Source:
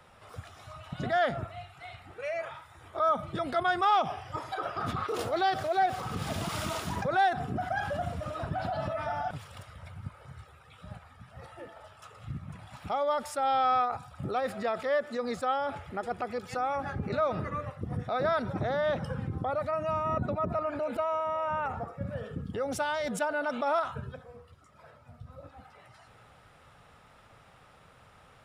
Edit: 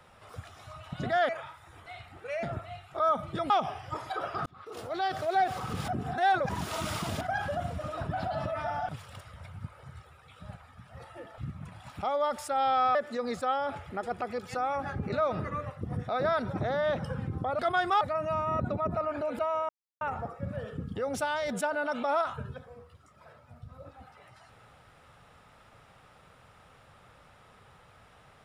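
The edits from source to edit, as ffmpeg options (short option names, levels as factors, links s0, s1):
-filter_complex "[0:a]asplit=15[s0][s1][s2][s3][s4][s5][s6][s7][s8][s9][s10][s11][s12][s13][s14];[s0]atrim=end=1.292[s15];[s1]atrim=start=2.368:end=2.942[s16];[s2]atrim=start=1.798:end=2.372[s17];[s3]atrim=start=1.288:end=1.802[s18];[s4]atrim=start=2.938:end=3.502[s19];[s5]atrim=start=3.918:end=4.88,asetpts=PTS-STARTPTS,afade=t=out:st=0.958:d=0.004:c=hsin[s20];[s6]atrim=start=4.88:end=6.302,asetpts=PTS-STARTPTS,afade=t=in:d=0.87[s21];[s7]atrim=start=6.298:end=7.632,asetpts=PTS-STARTPTS,areverse[s22];[s8]atrim=start=7.628:end=11.802[s23];[s9]atrim=start=12.248:end=13.822[s24];[s10]atrim=start=14.948:end=19.592[s25];[s11]atrim=start=3.498:end=3.922[s26];[s12]atrim=start=19.588:end=21.27,asetpts=PTS-STARTPTS,afade=t=out:st=1.678:d=0.004:c=hsin[s27];[s13]atrim=start=21.27:end=21.59,asetpts=PTS-STARTPTS,volume=0[s28];[s14]atrim=start=21.59,asetpts=PTS-STARTPTS,afade=t=in:d=0.004:c=hsin[s29];[s15][s16]acrossfade=d=0.004:c1=hsin:c2=hsin[s30];[s30][s17]acrossfade=d=0.004:c1=hsin:c2=hsin[s31];[s31][s18]acrossfade=d=0.004:c1=hsin:c2=hsin[s32];[s32][s19]acrossfade=d=0.004:c1=hsin:c2=hsin[s33];[s20][s21]concat=n=2:v=0:a=1[s34];[s33][s34]acrossfade=d=0.004:c1=hsin:c2=hsin[s35];[s35][s22]acrossfade=d=0.004:c1=hsin:c2=hsin[s36];[s36][s23]acrossfade=d=0.004:c1=hsin:c2=hsin[s37];[s37][s24]acrossfade=d=0.004:c1=hsin:c2=hsin[s38];[s38][s25]acrossfade=d=0.004:c1=hsin:c2=hsin[s39];[s39][s26]acrossfade=d=0.004:c1=hsin:c2=hsin[s40];[s27][s28][s29]concat=n=3:v=0:a=1[s41];[s40][s41]acrossfade=d=0.004:c1=hsin:c2=hsin"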